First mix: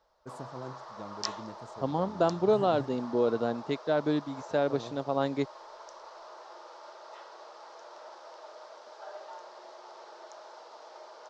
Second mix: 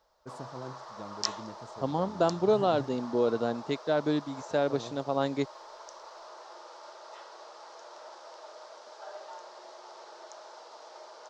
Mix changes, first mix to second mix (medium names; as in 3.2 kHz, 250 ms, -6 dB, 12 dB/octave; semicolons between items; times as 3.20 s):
first voice: add distance through air 61 m; master: add treble shelf 7.2 kHz +11 dB